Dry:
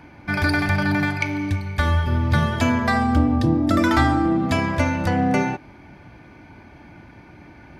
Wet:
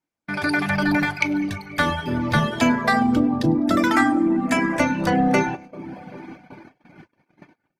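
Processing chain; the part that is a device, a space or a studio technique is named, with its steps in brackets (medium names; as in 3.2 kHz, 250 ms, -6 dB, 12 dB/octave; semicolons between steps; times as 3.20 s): 3.95–4.80 s: graphic EQ 125/250/500/2000/4000/8000 Hz -12/+7/-3/+5/-9/+7 dB; two-band feedback delay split 1.1 kHz, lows 390 ms, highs 101 ms, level -16 dB; reverb removal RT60 0.82 s; video call (high-pass 140 Hz 24 dB/octave; level rider gain up to 10.5 dB; gate -34 dBFS, range -37 dB; trim -4 dB; Opus 24 kbps 48 kHz)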